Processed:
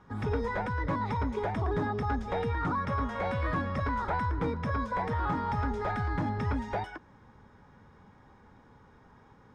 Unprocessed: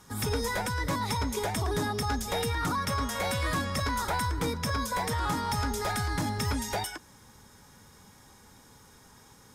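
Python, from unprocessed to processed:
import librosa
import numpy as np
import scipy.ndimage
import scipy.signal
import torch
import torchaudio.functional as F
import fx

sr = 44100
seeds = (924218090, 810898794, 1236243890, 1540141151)

y = scipy.signal.sosfilt(scipy.signal.butter(2, 1700.0, 'lowpass', fs=sr, output='sos'), x)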